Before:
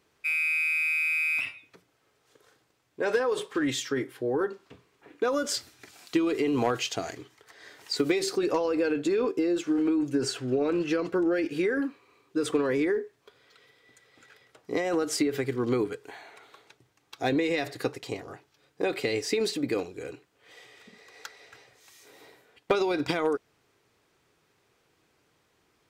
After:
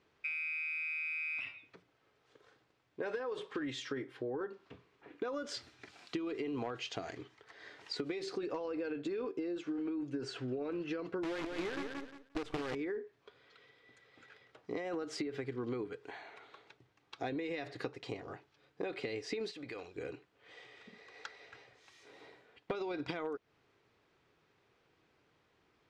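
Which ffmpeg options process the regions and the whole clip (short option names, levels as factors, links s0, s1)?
-filter_complex "[0:a]asettb=1/sr,asplit=3[s0][s1][s2];[s0]atrim=end=11.234[s3];[s1]atrim=start=11.23:end=12.75,asetpts=PTS-STARTPTS,afade=t=in:d=0.004:c=qsin,afade=t=out:st=1.516:d=0.004:c=qsin,acrusher=bits=5:dc=4:mix=0:aa=0.000001,aeval=exprs='(mod(7.5*val(0)+1,2)-1)/7.5':c=same,aecho=1:1:176|352|528:0.422|0.0717|0.0122,atrim=end_sample=67032[s4];[s2]atrim=start=12.746[s5];[s3][s4]acrossfade=d=0.004:c1=hsin:c2=qsin[s6];[s6][s5]acrossfade=d=0.004:c1=qsin:c2=hsin,asettb=1/sr,asplit=3[s7][s8][s9];[s7]atrim=end=19.514[s10];[s8]atrim=start=19.51:end=19.96,asetpts=PTS-STARTPTS,afade=t=in:d=0.004:c=qsin,afade=t=out:st=0.446:d=0.004:c=qsin,equalizer=f=220:t=o:w=2.7:g=-12.5,acompressor=threshold=0.0141:ratio=5:attack=3.2:release=140:knee=1:detection=peak[s11];[s9]atrim=start=19.956[s12];[s10][s11]acrossfade=d=0.004:c1=hsin:c2=qsin[s13];[s13][s12]acrossfade=d=0.004:c1=qsin:c2=hsin,lowpass=4100,acompressor=threshold=0.02:ratio=4,volume=0.708"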